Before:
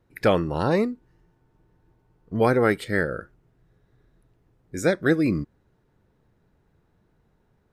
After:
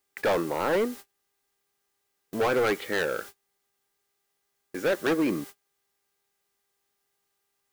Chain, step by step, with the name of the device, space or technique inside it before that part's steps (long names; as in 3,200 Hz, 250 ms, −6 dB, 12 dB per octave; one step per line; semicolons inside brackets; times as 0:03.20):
aircraft radio (band-pass filter 360–2,500 Hz; hard clipping −23.5 dBFS, distortion −6 dB; hum with harmonics 400 Hz, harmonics 5, −58 dBFS −2 dB per octave; white noise bed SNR 16 dB; noise gate −43 dBFS, range −31 dB)
level +3 dB